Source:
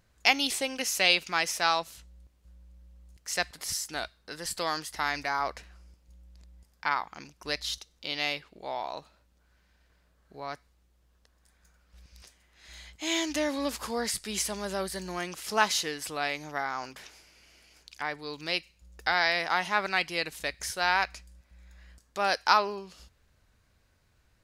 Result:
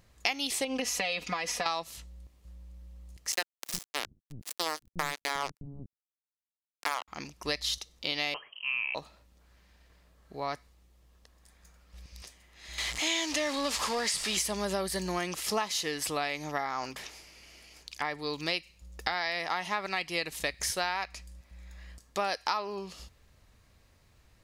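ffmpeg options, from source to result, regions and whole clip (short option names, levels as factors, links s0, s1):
-filter_complex "[0:a]asettb=1/sr,asplit=3[s0][s1][s2];[s0]atrim=end=0.644[s3];[s1]atrim=start=0.64:end=1.66,asetpts=PTS-STARTPTS,afade=t=in:d=0.004:c=qsin,afade=t=out:st=1.016:d=0.004:c=qsin,lowpass=f=2600:p=1,aecho=1:1:4.1:0.95,atrim=end_sample=44982,acompressor=threshold=0.0316:ratio=5:attack=3.2:release=140:knee=1:detection=peak[s4];[s2]atrim=start=1.656[s5];[s3][s4]acrossfade=d=0.004:c1=hsin:c2=qsin[s6];[s6][s5]acrossfade=d=0.004:c1=qsin:c2=hsin,asettb=1/sr,asplit=3[s7][s8][s9];[s7]atrim=end=3.324[s10];[s8]atrim=start=3.32:end=7.08,asetpts=PTS-STARTPTS,afade=t=in:d=0.004:c=qsin,afade=t=out:st=3.756:d=0.004:c=qsin,acrusher=bits=3:mix=0:aa=0.5,acrossover=split=240[s11][s12];[s11]adelay=360[s13];[s13][s12]amix=inputs=2:normalize=0,atrim=end_sample=165816[s14];[s9]atrim=start=7.076[s15];[s10][s14]acrossfade=d=0.004:c1=hsin:c2=qsin[s16];[s16][s15]acrossfade=d=0.004:c1=qsin:c2=hsin,asettb=1/sr,asplit=3[s17][s18][s19];[s17]atrim=end=8.344[s20];[s18]atrim=start=8.34:end=8.95,asetpts=PTS-STARTPTS,afade=t=in:d=0.004:c=qsin,afade=t=out:st=0.606:d=0.004:c=qsin,highpass=89,lowpass=f=2800:t=q:w=0.5098,lowpass=f=2800:t=q:w=0.6013,lowpass=f=2800:t=q:w=0.9,lowpass=f=2800:t=q:w=2.563,afreqshift=-3300[s21];[s19]atrim=start=8.946[s22];[s20][s21]acrossfade=d=0.004:c1=hsin:c2=qsin[s23];[s23][s22]acrossfade=d=0.004:c1=qsin:c2=hsin,asettb=1/sr,asplit=3[s24][s25][s26];[s24]atrim=end=12.784[s27];[s25]atrim=start=12.78:end=14.37,asetpts=PTS-STARTPTS,afade=t=in:d=0.004:c=qsin,afade=t=out:st=1.586:d=0.004:c=qsin,aeval=exprs='val(0)+0.5*0.0282*sgn(val(0))':c=same,lowpass=8200,lowshelf=f=480:g=-12[s28];[s26]atrim=start=14.366[s29];[s27][s28]acrossfade=d=0.004:c1=hsin:c2=qsin[s30];[s30][s29]acrossfade=d=0.004:c1=qsin:c2=hsin,acompressor=threshold=0.0251:ratio=6,bandreject=f=1500:w=8.6,volume=1.78"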